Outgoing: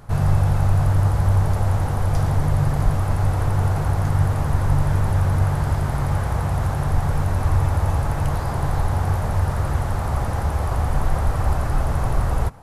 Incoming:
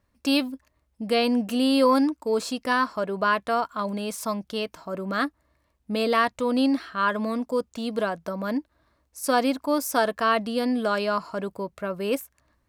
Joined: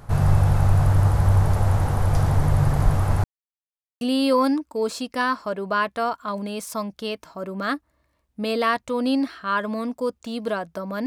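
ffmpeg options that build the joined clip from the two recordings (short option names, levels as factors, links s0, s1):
-filter_complex "[0:a]apad=whole_dur=11.06,atrim=end=11.06,asplit=2[s0][s1];[s0]atrim=end=3.24,asetpts=PTS-STARTPTS,afade=t=out:st=3.236:d=0.004:c=hsin[s2];[s1]atrim=start=3.24:end=4.01,asetpts=PTS-STARTPTS,volume=0[s3];[1:a]atrim=start=1.52:end=8.57,asetpts=PTS-STARTPTS,afade=t=in:d=0.004:c=hsin[s4];[s2][s3][s4]concat=n=3:v=0:a=1"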